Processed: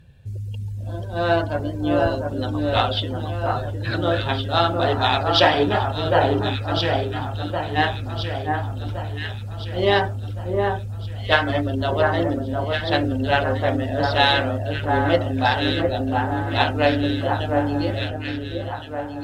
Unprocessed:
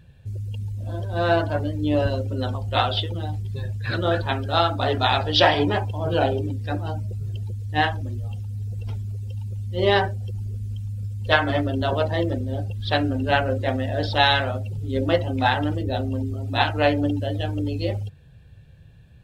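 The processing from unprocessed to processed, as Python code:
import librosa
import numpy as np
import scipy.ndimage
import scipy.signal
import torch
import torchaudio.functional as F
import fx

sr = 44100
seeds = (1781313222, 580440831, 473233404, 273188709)

y = fx.cheby_harmonics(x, sr, harmonics=(7,), levels_db=(-39,), full_scale_db=-1.5)
y = fx.echo_alternate(y, sr, ms=708, hz=1600.0, feedback_pct=67, wet_db=-3)
y = F.gain(torch.from_numpy(y), 1.0).numpy()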